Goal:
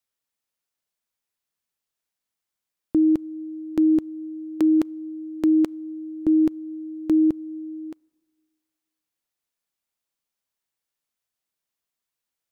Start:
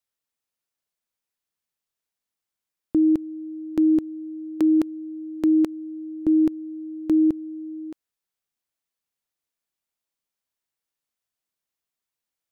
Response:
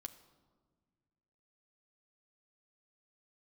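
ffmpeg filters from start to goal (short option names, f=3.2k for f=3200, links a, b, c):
-filter_complex "[0:a]asplit=2[a][b];[1:a]atrim=start_sample=2205,lowshelf=f=410:g=-9.5[c];[b][c]afir=irnorm=-1:irlink=0,volume=-11dB[d];[a][d]amix=inputs=2:normalize=0"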